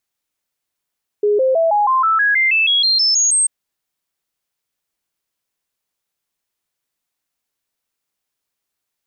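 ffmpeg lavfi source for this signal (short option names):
-f lavfi -i "aevalsrc='0.266*clip(min(mod(t,0.16),0.16-mod(t,0.16))/0.005,0,1)*sin(2*PI*415*pow(2,floor(t/0.16)/3)*mod(t,0.16))':d=2.24:s=44100"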